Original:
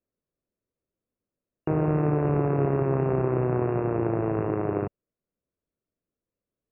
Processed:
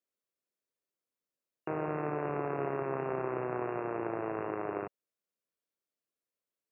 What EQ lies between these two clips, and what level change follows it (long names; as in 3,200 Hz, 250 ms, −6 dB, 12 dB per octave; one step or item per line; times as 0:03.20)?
high-pass filter 1,100 Hz 6 dB per octave
0.0 dB